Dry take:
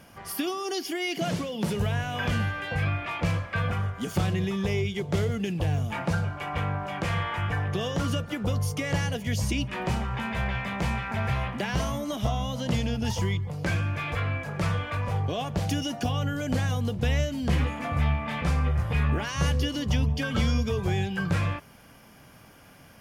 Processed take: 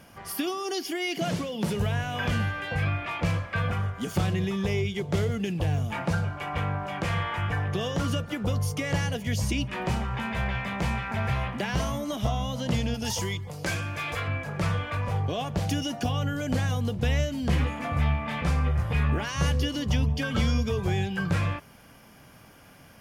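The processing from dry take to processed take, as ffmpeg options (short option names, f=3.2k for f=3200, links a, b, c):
-filter_complex "[0:a]asettb=1/sr,asplit=3[a][b][c];[a]atrim=end=12.944[d];[b]atrim=start=12.94:end=14.28,asetpts=PTS-STARTPTS,afade=t=in:d=0.004:c=qsin,afade=t=out:st=1.336:d=0.004:c=qsin,bass=f=250:g=-6,treble=f=4k:g=8[e];[c]atrim=start=14.276[f];[d][e]acrossfade=d=0.004:c1=hsin:c2=qsin[g];[g][f]acrossfade=d=0.004:c1=qsin:c2=hsin"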